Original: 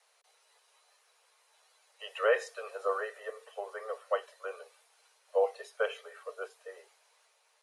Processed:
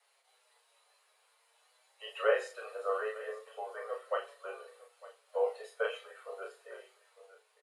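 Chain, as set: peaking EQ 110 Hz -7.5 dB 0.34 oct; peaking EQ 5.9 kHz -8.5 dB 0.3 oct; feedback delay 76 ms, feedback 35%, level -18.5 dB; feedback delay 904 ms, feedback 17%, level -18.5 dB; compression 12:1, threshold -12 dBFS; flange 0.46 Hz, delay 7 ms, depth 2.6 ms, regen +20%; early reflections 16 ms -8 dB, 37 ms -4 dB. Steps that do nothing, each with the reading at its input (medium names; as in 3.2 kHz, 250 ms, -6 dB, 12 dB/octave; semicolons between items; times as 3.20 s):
peaking EQ 110 Hz: input has nothing below 380 Hz; compression, threshold -12 dBFS: peak at its input -14.0 dBFS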